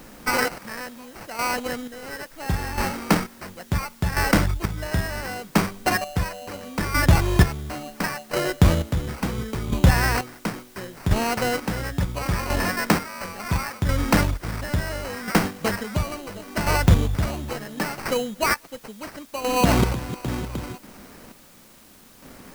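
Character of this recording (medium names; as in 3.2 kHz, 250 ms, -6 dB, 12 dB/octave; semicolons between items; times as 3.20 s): aliases and images of a low sample rate 3.5 kHz, jitter 0%; chopped level 0.72 Hz, depth 65%, duty 35%; a quantiser's noise floor 10-bit, dither triangular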